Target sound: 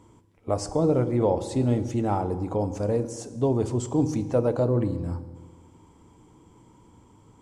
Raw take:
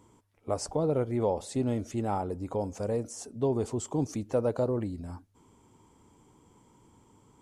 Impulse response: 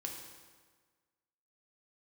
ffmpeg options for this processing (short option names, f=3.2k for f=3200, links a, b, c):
-filter_complex "[0:a]highshelf=f=9.2k:g=-8,asplit=2[a][b];[1:a]atrim=start_sample=2205,lowshelf=f=280:g=8.5[c];[b][c]afir=irnorm=-1:irlink=0,volume=-4.5dB[d];[a][d]amix=inputs=2:normalize=0,volume=1dB"